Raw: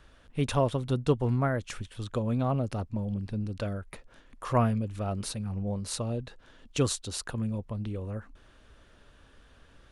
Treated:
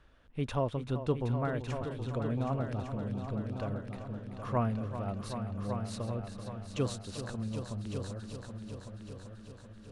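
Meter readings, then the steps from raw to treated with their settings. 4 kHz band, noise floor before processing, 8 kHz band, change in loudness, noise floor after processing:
-8.0 dB, -58 dBFS, -11.5 dB, -5.0 dB, -52 dBFS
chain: treble shelf 5.5 kHz -11.5 dB; multi-head delay 385 ms, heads all three, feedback 52%, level -11 dB; trim -5.5 dB

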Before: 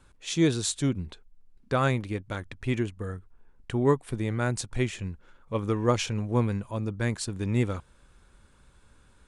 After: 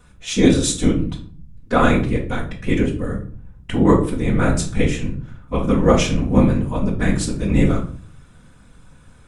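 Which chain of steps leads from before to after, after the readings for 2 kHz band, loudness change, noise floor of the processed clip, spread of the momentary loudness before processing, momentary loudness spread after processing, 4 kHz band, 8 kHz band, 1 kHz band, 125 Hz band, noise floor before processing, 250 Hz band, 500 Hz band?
+9.0 dB, +9.5 dB, -48 dBFS, 13 LU, 12 LU, +7.5 dB, +8.0 dB, +9.0 dB, +8.0 dB, -60 dBFS, +11.5 dB, +9.0 dB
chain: band-stop 4.4 kHz, Q 11; whisper effect; simulated room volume 400 m³, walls furnished, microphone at 1.9 m; trim +6 dB

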